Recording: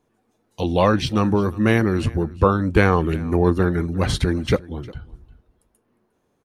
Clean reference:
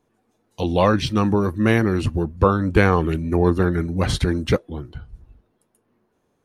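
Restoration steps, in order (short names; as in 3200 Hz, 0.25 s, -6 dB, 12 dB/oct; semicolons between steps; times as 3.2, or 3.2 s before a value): inverse comb 0.355 s -21 dB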